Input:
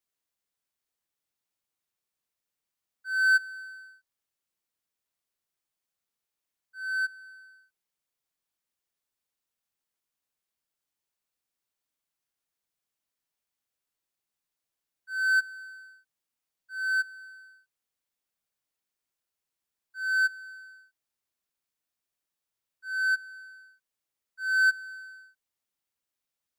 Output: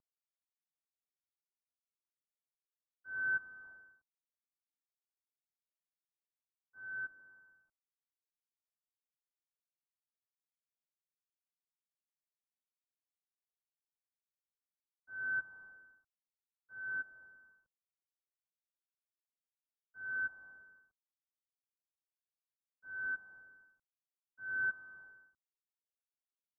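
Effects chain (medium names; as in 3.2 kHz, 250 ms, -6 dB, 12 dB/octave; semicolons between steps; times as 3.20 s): CVSD coder 64 kbps; steep low-pass 1.4 kHz 72 dB/octave; trim -2.5 dB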